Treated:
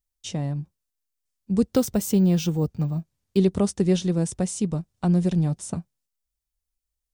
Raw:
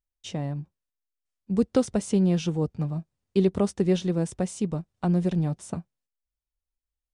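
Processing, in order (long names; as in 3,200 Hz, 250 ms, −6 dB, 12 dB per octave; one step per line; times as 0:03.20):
bass and treble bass +4 dB, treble +8 dB
0:01.73–0:03.37: bad sample-rate conversion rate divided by 2×, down none, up hold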